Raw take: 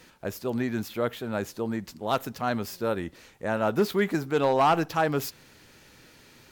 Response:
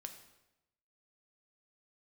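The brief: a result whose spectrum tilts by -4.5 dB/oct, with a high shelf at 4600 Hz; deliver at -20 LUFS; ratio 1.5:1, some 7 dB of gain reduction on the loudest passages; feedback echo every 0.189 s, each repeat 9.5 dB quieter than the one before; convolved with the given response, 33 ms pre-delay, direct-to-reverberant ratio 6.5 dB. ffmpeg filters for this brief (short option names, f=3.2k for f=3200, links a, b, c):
-filter_complex "[0:a]highshelf=f=4.6k:g=7.5,acompressor=threshold=-38dB:ratio=1.5,aecho=1:1:189|378|567|756:0.335|0.111|0.0365|0.012,asplit=2[a][b];[1:a]atrim=start_sample=2205,adelay=33[c];[b][c]afir=irnorm=-1:irlink=0,volume=-2dB[d];[a][d]amix=inputs=2:normalize=0,volume=12dB"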